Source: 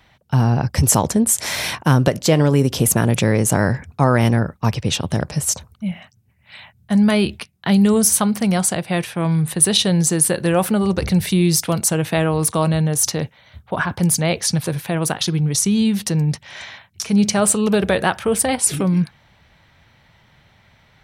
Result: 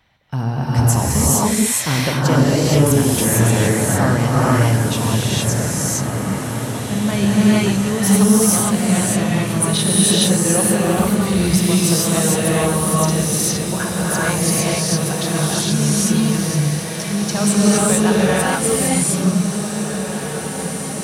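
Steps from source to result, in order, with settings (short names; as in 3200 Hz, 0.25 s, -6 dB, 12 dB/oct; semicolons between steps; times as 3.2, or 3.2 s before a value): diffused feedback echo 1.903 s, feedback 69%, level -9 dB; non-linear reverb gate 0.49 s rising, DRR -7 dB; gain -6.5 dB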